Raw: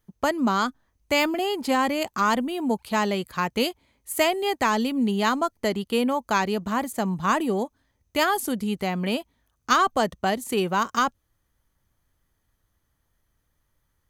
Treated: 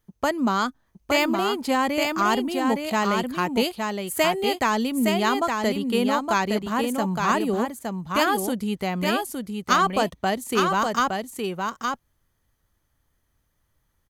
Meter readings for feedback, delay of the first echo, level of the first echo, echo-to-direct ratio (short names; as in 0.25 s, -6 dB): no steady repeat, 0.865 s, -4.5 dB, -4.5 dB